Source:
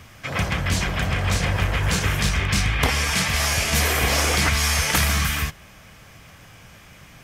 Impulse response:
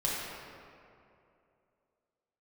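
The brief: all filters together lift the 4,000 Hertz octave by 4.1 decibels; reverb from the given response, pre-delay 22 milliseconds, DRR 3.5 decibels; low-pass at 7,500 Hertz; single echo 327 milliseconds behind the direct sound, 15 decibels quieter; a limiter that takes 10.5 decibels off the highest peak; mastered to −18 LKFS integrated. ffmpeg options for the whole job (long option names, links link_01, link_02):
-filter_complex "[0:a]lowpass=7500,equalizer=frequency=4000:width_type=o:gain=6,alimiter=limit=-14.5dB:level=0:latency=1,aecho=1:1:327:0.178,asplit=2[link_01][link_02];[1:a]atrim=start_sample=2205,adelay=22[link_03];[link_02][link_03]afir=irnorm=-1:irlink=0,volume=-11dB[link_04];[link_01][link_04]amix=inputs=2:normalize=0,volume=3.5dB"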